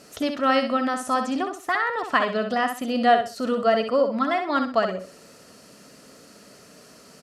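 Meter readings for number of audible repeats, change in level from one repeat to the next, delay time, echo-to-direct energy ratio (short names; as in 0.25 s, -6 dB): 3, -11.5 dB, 64 ms, -6.5 dB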